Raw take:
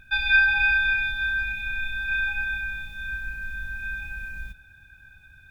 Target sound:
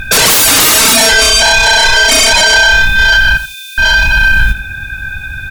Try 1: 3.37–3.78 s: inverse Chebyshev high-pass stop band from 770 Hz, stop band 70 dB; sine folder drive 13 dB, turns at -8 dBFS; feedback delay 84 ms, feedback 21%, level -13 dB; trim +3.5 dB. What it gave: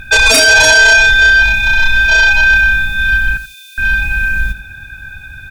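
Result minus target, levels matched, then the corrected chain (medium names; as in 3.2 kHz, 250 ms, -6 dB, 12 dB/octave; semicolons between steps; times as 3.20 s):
sine folder: distortion -14 dB
3.37–3.78 s: inverse Chebyshev high-pass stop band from 770 Hz, stop band 70 dB; sine folder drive 22 dB, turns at -8 dBFS; feedback delay 84 ms, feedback 21%, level -13 dB; trim +3.5 dB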